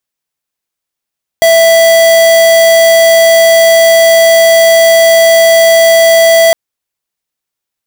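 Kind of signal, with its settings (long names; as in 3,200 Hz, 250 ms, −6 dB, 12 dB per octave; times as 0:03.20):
tone square 661 Hz −5 dBFS 5.11 s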